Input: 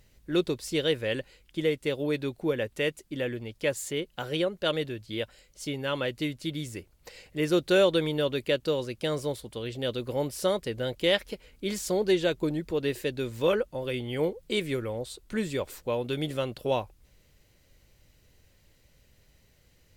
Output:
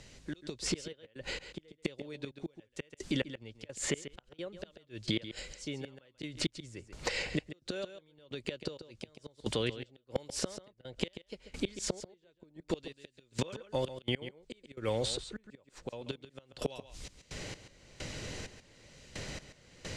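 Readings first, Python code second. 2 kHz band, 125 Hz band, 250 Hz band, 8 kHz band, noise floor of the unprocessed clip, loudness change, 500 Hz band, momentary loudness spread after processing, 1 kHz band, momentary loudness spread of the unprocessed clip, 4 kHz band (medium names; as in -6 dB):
-8.5 dB, -7.0 dB, -9.0 dB, -0.5 dB, -63 dBFS, -10.0 dB, -12.5 dB, 14 LU, -10.5 dB, 10 LU, -6.5 dB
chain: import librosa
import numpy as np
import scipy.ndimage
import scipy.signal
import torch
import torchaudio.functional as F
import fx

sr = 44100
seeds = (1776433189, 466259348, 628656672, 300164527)

p1 = fx.gate_flip(x, sr, shuts_db=-23.0, range_db=-33)
p2 = fx.high_shelf(p1, sr, hz=4700.0, db=5.5)
p3 = fx.step_gate(p2, sr, bpm=65, pattern='..xx.x..xx...x', floor_db=-24.0, edge_ms=4.5)
p4 = fx.dynamic_eq(p3, sr, hz=2000.0, q=0.75, threshold_db=-53.0, ratio=4.0, max_db=3)
p5 = fx.over_compress(p4, sr, threshold_db=-38.0, ratio=-0.5)
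p6 = p4 + F.gain(torch.from_numpy(p5), 2.5).numpy()
p7 = scipy.signal.sosfilt(scipy.signal.butter(4, 7700.0, 'lowpass', fs=sr, output='sos'), p6)
p8 = p7 + fx.echo_single(p7, sr, ms=137, db=-13.5, dry=0)
p9 = fx.band_squash(p8, sr, depth_pct=70)
y = F.gain(torch.from_numpy(p9), 2.0).numpy()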